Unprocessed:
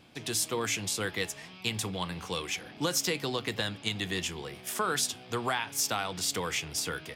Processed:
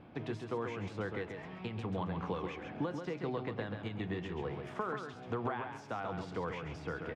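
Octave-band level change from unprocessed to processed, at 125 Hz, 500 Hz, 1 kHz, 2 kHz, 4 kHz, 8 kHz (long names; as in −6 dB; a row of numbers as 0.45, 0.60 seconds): −1.5 dB, −3.0 dB, −5.0 dB, −10.0 dB, −20.5 dB, below −30 dB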